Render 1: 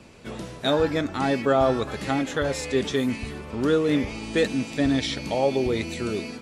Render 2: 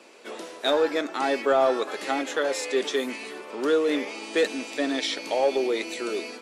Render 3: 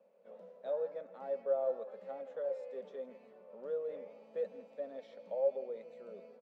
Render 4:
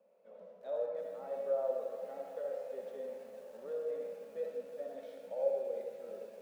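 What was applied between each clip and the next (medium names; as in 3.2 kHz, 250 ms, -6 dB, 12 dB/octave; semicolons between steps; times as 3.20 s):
high-pass 330 Hz 24 dB/octave; in parallel at -7.5 dB: hard clipper -21 dBFS, distortion -11 dB; on the sum: trim -2 dB
two resonant band-passes 320 Hz, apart 1.5 oct; delay 163 ms -16 dB; trim -6.5 dB
on a send at -1.5 dB: reverberation RT60 0.95 s, pre-delay 20 ms; on the sum: bit-crushed delay 338 ms, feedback 80%, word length 9-bit, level -14.5 dB; trim -3 dB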